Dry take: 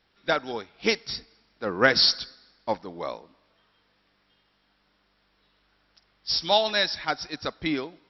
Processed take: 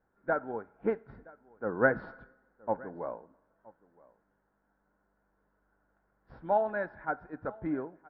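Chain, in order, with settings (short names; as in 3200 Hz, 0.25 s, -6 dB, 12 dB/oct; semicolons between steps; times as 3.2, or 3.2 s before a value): Chebyshev low-pass 1500 Hz, order 4; notch 1200 Hz, Q 7.5; echo 0.97 s -23.5 dB; reverb, pre-delay 3 ms, DRR 15.5 dB; gain -4 dB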